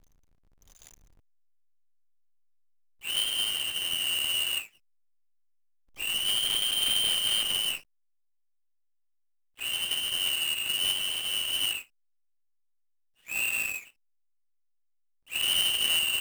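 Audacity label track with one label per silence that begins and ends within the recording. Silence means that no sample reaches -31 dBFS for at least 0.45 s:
4.580000	6.000000	silence
7.750000	9.620000	silence
11.780000	13.310000	silence
13.760000	15.330000	silence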